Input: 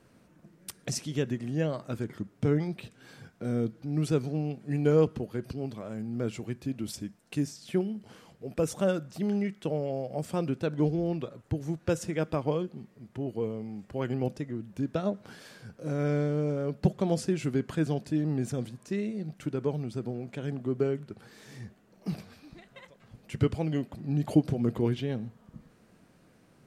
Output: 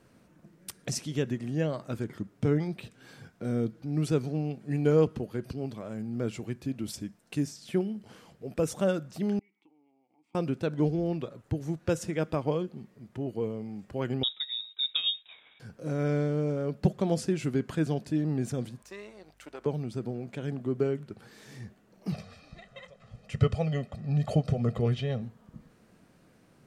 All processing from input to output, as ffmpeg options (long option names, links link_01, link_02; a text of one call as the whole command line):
ffmpeg -i in.wav -filter_complex "[0:a]asettb=1/sr,asplit=3[link_01][link_02][link_03];[link_01]atrim=end=9.394[link_04];[link_02]atrim=start=9.39:end=10.35,asetpts=PTS-STARTPTS,afade=type=in:duration=0.004:curve=qsin,afade=type=out:start_time=0.956:duration=0.004:curve=qsin,equalizer=frequency=150:width=0.4:gain=-15,acompressor=threshold=-48dB:ratio=8:attack=3.2:release=140:knee=1:detection=peak,asplit=3[link_05][link_06][link_07];[link_05]bandpass=frequency=300:width_type=q:width=8,volume=0dB[link_08];[link_06]bandpass=frequency=870:width_type=q:width=8,volume=-6dB[link_09];[link_07]bandpass=frequency=2240:width_type=q:width=8,volume=-9dB[link_10];[link_08][link_09][link_10]amix=inputs=3:normalize=0[link_11];[link_03]atrim=start=10.346[link_12];[link_04][link_11]acrossfade=duration=0.004:curve1=hsin:curve2=qsin[link_13];[link_13][link_12]acrossfade=duration=0.004:curve1=qsin:curve2=hsin,asettb=1/sr,asplit=3[link_14][link_15][link_16];[link_14]atrim=end=14.234[link_17];[link_15]atrim=start=14.23:end=15.6,asetpts=PTS-STARTPTS,afade=type=in:duration=0.004:curve=qsin,afade=type=out:start_time=1.366:duration=0.004:curve=qsin,agate=range=-33dB:threshold=-45dB:ratio=3:release=100:detection=peak,lowpass=frequency=3300:width_type=q:width=0.5098,lowpass=frequency=3300:width_type=q:width=0.6013,lowpass=frequency=3300:width_type=q:width=0.9,lowpass=frequency=3300:width_type=q:width=2.563,afreqshift=-3900[link_18];[link_16]atrim=start=15.596[link_19];[link_17][link_18]acrossfade=duration=0.004:curve1=hsin:curve2=qsin[link_20];[link_20][link_19]acrossfade=duration=0.004:curve1=qsin:curve2=hsin,asettb=1/sr,asplit=3[link_21][link_22][link_23];[link_21]atrim=end=18.824[link_24];[link_22]atrim=start=18.82:end=19.66,asetpts=PTS-STARTPTS,afade=type=in:duration=0.004:curve=qsin,afade=type=out:start_time=0.836:duration=0.004:curve=qsin,aeval=exprs='if(lt(val(0),0),0.447*val(0),val(0))':channel_layout=same,highpass=620,aeval=exprs='val(0)+0.000501*(sin(2*PI*50*n/s)+sin(2*PI*2*50*n/s)/2+sin(2*PI*3*50*n/s)/3+sin(2*PI*4*50*n/s)/4+sin(2*PI*5*50*n/s)/5)':channel_layout=same[link_25];[link_23]atrim=start=19.656[link_26];[link_24][link_25]acrossfade=duration=0.004:curve1=hsin:curve2=qsin[link_27];[link_27][link_26]acrossfade=duration=0.004:curve1=qsin:curve2=hsin,asettb=1/sr,asplit=3[link_28][link_29][link_30];[link_28]atrim=end=22.124[link_31];[link_29]atrim=start=22.12:end=25.22,asetpts=PTS-STARTPTS,afade=type=in:duration=0.004:curve=qsin,afade=type=out:start_time=3.096:duration=0.004:curve=qsin,lowpass=7500,aecho=1:1:1.6:0.83,atrim=end_sample=136710[link_32];[link_30]atrim=start=25.216[link_33];[link_31][link_32]acrossfade=duration=0.004:curve1=hsin:curve2=qsin[link_34];[link_34][link_33]acrossfade=duration=0.004:curve1=qsin:curve2=hsin" out.wav